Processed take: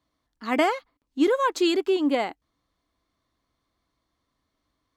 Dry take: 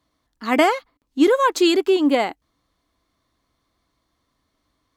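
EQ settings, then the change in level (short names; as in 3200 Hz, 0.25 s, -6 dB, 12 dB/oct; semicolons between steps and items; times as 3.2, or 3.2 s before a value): high shelf 10000 Hz -6 dB; -5.5 dB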